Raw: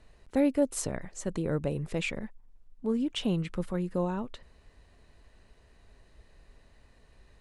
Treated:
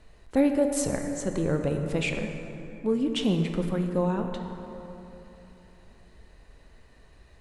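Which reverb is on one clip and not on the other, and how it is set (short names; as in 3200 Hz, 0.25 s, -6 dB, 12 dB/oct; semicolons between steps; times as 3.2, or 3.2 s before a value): plate-style reverb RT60 3.4 s, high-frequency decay 0.45×, DRR 4 dB; gain +3 dB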